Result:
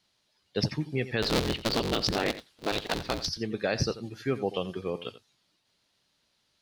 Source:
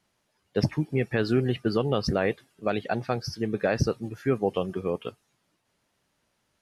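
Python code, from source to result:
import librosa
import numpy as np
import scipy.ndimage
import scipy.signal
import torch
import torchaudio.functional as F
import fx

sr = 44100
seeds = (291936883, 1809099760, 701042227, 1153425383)

y = fx.cycle_switch(x, sr, every=3, mode='inverted', at=(1.22, 3.29))
y = fx.peak_eq(y, sr, hz=4100.0, db=13.5, octaves=1.1)
y = y + 10.0 ** (-14.5 / 20.0) * np.pad(y, (int(87 * sr / 1000.0), 0))[:len(y)]
y = y * librosa.db_to_amplitude(-4.5)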